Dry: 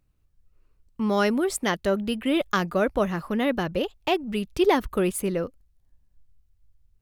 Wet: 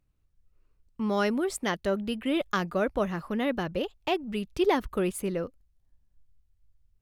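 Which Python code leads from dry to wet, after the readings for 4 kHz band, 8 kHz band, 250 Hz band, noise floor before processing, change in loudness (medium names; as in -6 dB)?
-4.5 dB, -6.0 dB, -4.0 dB, -66 dBFS, -4.0 dB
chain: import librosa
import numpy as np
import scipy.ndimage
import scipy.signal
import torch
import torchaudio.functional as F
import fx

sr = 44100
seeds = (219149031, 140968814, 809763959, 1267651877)

y = fx.high_shelf(x, sr, hz=10000.0, db=-5.0)
y = y * librosa.db_to_amplitude(-4.0)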